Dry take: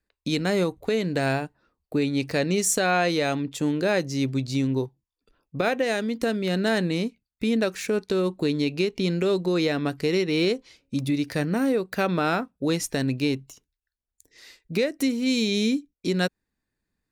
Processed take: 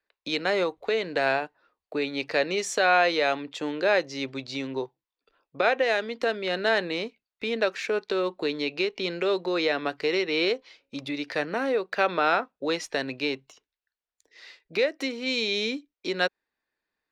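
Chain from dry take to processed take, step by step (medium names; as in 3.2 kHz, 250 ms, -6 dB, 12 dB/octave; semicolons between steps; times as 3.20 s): three-band isolator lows -21 dB, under 400 Hz, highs -24 dB, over 5 kHz; trim +3 dB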